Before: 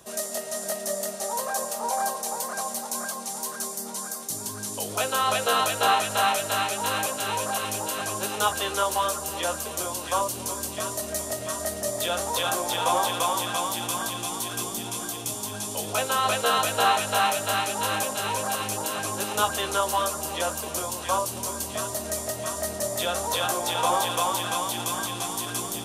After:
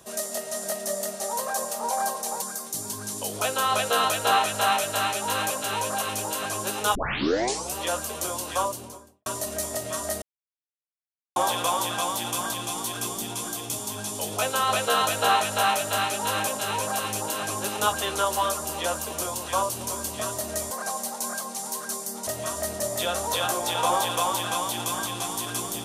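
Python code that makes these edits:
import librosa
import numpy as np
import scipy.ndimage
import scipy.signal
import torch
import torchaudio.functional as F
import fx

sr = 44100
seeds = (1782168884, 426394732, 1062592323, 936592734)

y = fx.studio_fade_out(x, sr, start_s=10.07, length_s=0.75)
y = fx.edit(y, sr, fx.move(start_s=2.42, length_s=1.56, to_s=22.27),
    fx.tape_start(start_s=8.51, length_s=0.81),
    fx.silence(start_s=11.78, length_s=1.14), tone=tone)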